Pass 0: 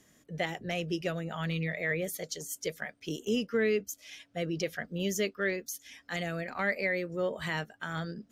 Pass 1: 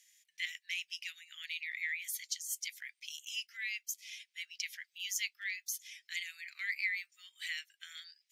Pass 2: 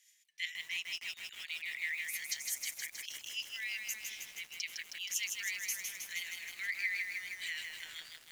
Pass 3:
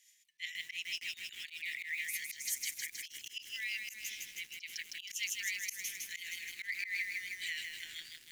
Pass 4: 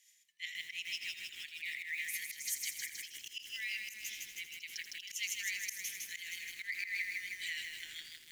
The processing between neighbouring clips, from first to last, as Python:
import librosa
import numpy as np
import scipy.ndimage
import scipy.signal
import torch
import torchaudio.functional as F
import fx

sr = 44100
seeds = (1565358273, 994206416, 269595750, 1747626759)

y1 = scipy.signal.sosfilt(scipy.signal.ellip(4, 1.0, 70, 2100.0, 'highpass', fs=sr, output='sos'), x)
y1 = F.gain(torch.from_numpy(y1), 1.0).numpy()
y2 = fx.harmonic_tremolo(y1, sr, hz=5.7, depth_pct=50, crossover_hz=2000.0)
y2 = fx.echo_crushed(y2, sr, ms=158, feedback_pct=80, bits=9, wet_db=-4)
y2 = F.gain(torch.from_numpy(y2), 1.5).numpy()
y3 = fx.auto_swell(y2, sr, attack_ms=101.0)
y3 = fx.band_shelf(y3, sr, hz=840.0, db=-12.5, octaves=1.7)
y3 = F.gain(torch.from_numpy(y3), 1.0).numpy()
y4 = y3 + 10.0 ** (-11.5 / 20.0) * np.pad(y3, (int(83 * sr / 1000.0), 0))[:len(y3)]
y4 = F.gain(torch.from_numpy(y4), -1.0).numpy()